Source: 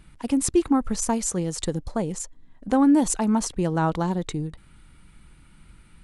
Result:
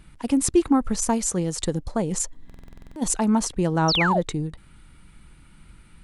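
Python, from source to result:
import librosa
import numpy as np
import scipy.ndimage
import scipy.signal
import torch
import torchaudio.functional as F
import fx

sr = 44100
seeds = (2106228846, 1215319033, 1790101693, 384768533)

y = fx.over_compress(x, sr, threshold_db=-29.0, ratio=-1.0, at=(2.11, 3.01), fade=0.02)
y = fx.spec_paint(y, sr, seeds[0], shape='fall', start_s=3.88, length_s=0.33, low_hz=470.0, high_hz=6100.0, level_db=-24.0)
y = fx.buffer_glitch(y, sr, at_s=(2.45,), block=2048, repeats=10)
y = y * librosa.db_to_amplitude(1.5)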